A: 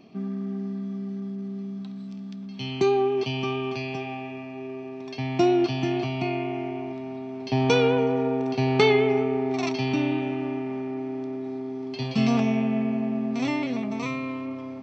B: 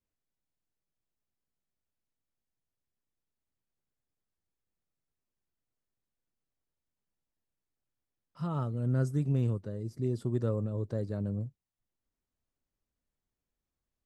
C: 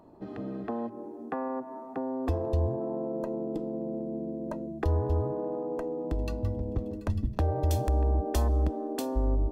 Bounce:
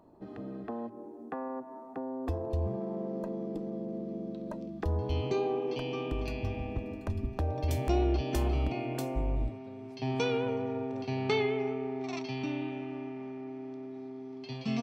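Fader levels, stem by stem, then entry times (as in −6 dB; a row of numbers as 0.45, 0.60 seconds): −10.0, −15.0, −4.5 decibels; 2.50, 0.00, 0.00 seconds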